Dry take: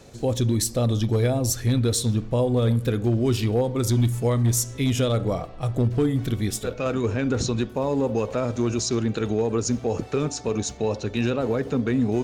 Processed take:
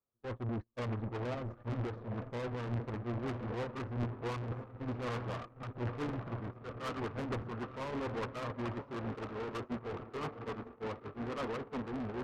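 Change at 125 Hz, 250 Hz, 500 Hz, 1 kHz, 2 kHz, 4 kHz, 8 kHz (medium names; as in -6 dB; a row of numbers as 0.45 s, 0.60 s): -16.5 dB, -16.0 dB, -16.0 dB, -8.0 dB, -9.0 dB, -19.0 dB, -33.5 dB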